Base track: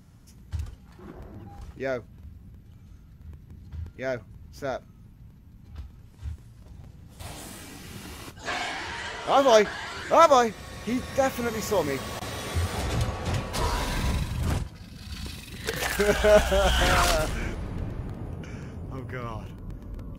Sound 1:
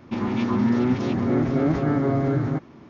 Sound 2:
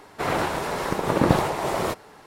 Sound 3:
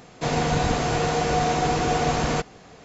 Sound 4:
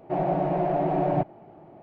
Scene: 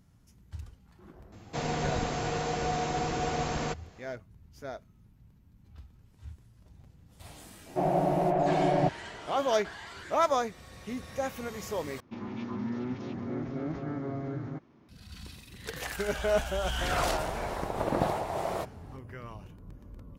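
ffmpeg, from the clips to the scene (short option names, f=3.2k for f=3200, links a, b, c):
-filter_complex "[0:a]volume=-9dB[a];[2:a]equalizer=f=690:w=2.2:g=8.5[b];[a]asplit=2[c][d];[c]atrim=end=12.004[e];[1:a]atrim=end=2.89,asetpts=PTS-STARTPTS,volume=-13.5dB[f];[d]atrim=start=14.886[g];[3:a]atrim=end=2.84,asetpts=PTS-STARTPTS,volume=-8.5dB,afade=t=in:d=0.004:c=hsin,afade=t=out:st=2.836:d=0.004:c=hsin,adelay=1320[h];[4:a]atrim=end=1.82,asetpts=PTS-STARTPTS,volume=-1.5dB,afade=t=in:d=0.004:c=hsin,afade=t=out:st=1.816:d=0.004:c=hsin,adelay=7660[i];[b]atrim=end=2.26,asetpts=PTS-STARTPTS,volume=-11.5dB,afade=t=in:d=0.004:c=hsin,afade=t=out:st=2.256:d=0.004:c=hsin,adelay=16710[j];[e][f]acrossfade=d=0.004:c1=hsin:c2=hsin[k];[k][g]acrossfade=d=0.004:c1=hsin:c2=hsin[l];[l][h][i][j]amix=inputs=4:normalize=0"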